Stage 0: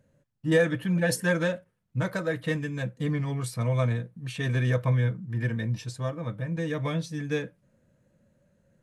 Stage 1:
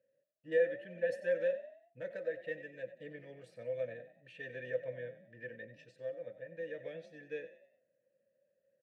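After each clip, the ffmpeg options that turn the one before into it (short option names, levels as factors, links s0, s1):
-filter_complex "[0:a]asplit=3[s0][s1][s2];[s0]bandpass=f=530:t=q:w=8,volume=1[s3];[s1]bandpass=f=1840:t=q:w=8,volume=0.501[s4];[s2]bandpass=f=2480:t=q:w=8,volume=0.355[s5];[s3][s4][s5]amix=inputs=3:normalize=0,asplit=5[s6][s7][s8][s9][s10];[s7]adelay=93,afreqshift=36,volume=0.211[s11];[s8]adelay=186,afreqshift=72,volume=0.0841[s12];[s9]adelay=279,afreqshift=108,volume=0.0339[s13];[s10]adelay=372,afreqshift=144,volume=0.0135[s14];[s6][s11][s12][s13][s14]amix=inputs=5:normalize=0,volume=0.708"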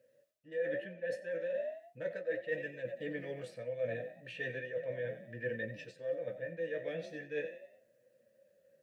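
-af "areverse,acompressor=threshold=0.00631:ratio=8,areverse,flanger=delay=8.1:depth=9.8:regen=44:speed=0.37:shape=sinusoidal,volume=5.01"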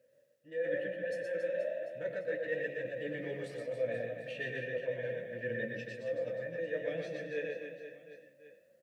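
-filter_complex "[0:a]bandreject=f=60:t=h:w=6,bandreject=f=120:t=h:w=6,bandreject=f=180:t=h:w=6,asplit=2[s0][s1];[s1]aecho=0:1:120|276|478.8|742.4|1085:0.631|0.398|0.251|0.158|0.1[s2];[s0][s2]amix=inputs=2:normalize=0"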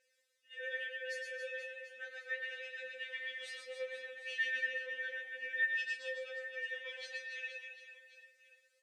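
-af "asuperpass=centerf=4200:order=4:qfactor=0.59,afftfilt=real='re*3.46*eq(mod(b,12),0)':imag='im*3.46*eq(mod(b,12),0)':win_size=2048:overlap=0.75,volume=2.99"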